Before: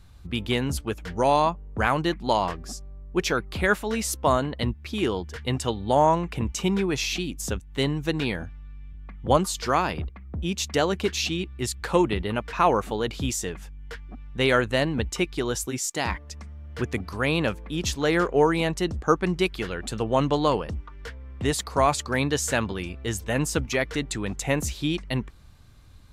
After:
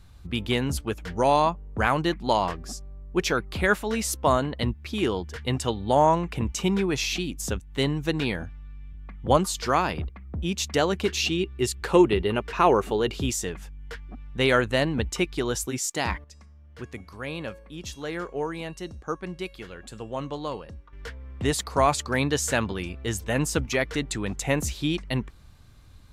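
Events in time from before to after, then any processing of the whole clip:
11.08–13.3 small resonant body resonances 390/2800 Hz, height 9 dB
16.24–20.93 resonator 550 Hz, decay 0.52 s, mix 70%

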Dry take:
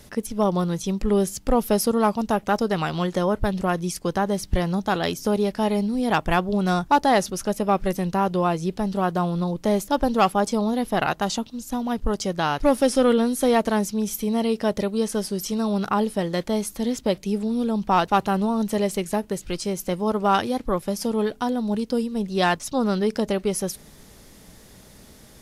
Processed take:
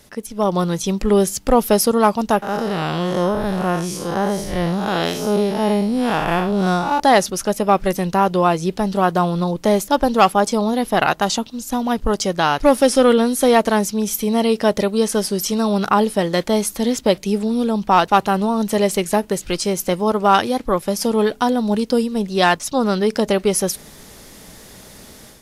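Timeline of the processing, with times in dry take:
2.42–7 time blur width 0.152 s
whole clip: low shelf 250 Hz -6 dB; AGC gain up to 9 dB

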